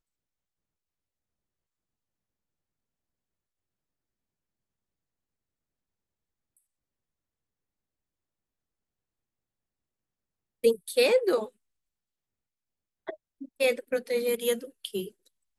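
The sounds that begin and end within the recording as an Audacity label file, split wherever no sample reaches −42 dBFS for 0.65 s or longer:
10.640000	11.480000	sound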